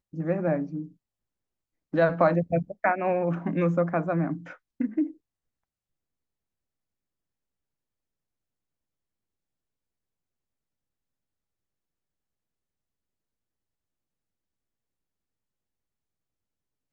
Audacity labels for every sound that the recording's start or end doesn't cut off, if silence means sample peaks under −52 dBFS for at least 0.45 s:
1.930000	5.170000	sound